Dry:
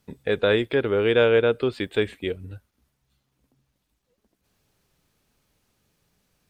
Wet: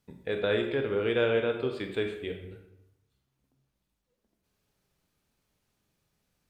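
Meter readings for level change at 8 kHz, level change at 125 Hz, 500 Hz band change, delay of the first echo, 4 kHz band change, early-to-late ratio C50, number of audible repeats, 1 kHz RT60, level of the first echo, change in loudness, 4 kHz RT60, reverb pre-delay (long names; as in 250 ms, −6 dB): can't be measured, −7.0 dB, −7.5 dB, no echo audible, −7.0 dB, 6.5 dB, no echo audible, 0.85 s, no echo audible, −7.0 dB, 0.60 s, 22 ms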